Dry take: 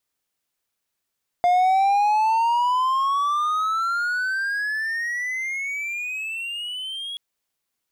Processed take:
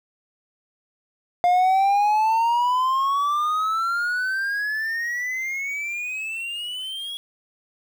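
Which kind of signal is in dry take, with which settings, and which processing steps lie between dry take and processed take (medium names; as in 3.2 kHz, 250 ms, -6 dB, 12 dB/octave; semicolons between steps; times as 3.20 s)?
gliding synth tone triangle, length 5.73 s, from 703 Hz, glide +27 st, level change -14.5 dB, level -12.5 dB
small samples zeroed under -39 dBFS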